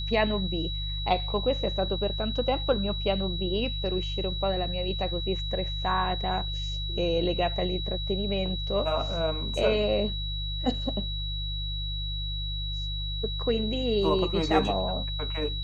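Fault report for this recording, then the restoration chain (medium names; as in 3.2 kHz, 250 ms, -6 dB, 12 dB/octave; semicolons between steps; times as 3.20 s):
hum 50 Hz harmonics 3 -33 dBFS
whine 3.9 kHz -34 dBFS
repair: band-stop 3.9 kHz, Q 30; de-hum 50 Hz, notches 3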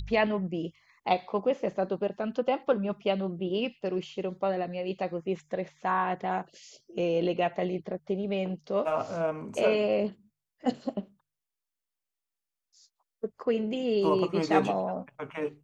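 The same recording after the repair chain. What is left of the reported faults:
nothing left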